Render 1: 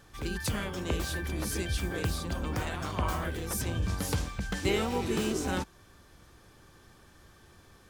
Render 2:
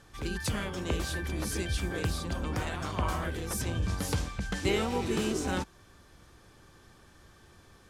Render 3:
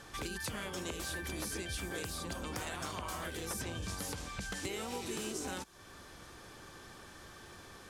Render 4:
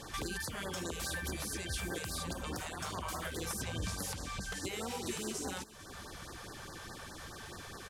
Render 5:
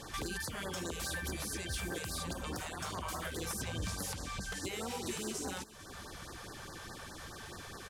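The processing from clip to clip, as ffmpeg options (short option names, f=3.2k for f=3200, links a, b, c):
-af "lowpass=12k"
-filter_complex "[0:a]lowshelf=f=190:g=-9,alimiter=level_in=1.5dB:limit=-24dB:level=0:latency=1:release=408,volume=-1.5dB,acrossover=split=3100|6900[a][b][c];[a]acompressor=threshold=-47dB:ratio=4[d];[b]acompressor=threshold=-57dB:ratio=4[e];[c]acompressor=threshold=-52dB:ratio=4[f];[d][e][f]amix=inputs=3:normalize=0,volume=7dB"
-af "alimiter=level_in=9dB:limit=-24dB:level=0:latency=1:release=434,volume=-9dB,aecho=1:1:449:0.1,afftfilt=real='re*(1-between(b*sr/1024,260*pow(2900/260,0.5+0.5*sin(2*PI*4.8*pts/sr))/1.41,260*pow(2900/260,0.5+0.5*sin(2*PI*4.8*pts/sr))*1.41))':imag='im*(1-between(b*sr/1024,260*pow(2900/260,0.5+0.5*sin(2*PI*4.8*pts/sr))/1.41,260*pow(2900/260,0.5+0.5*sin(2*PI*4.8*pts/sr))*1.41))':win_size=1024:overlap=0.75,volume=6dB"
-af "volume=31dB,asoftclip=hard,volume=-31dB"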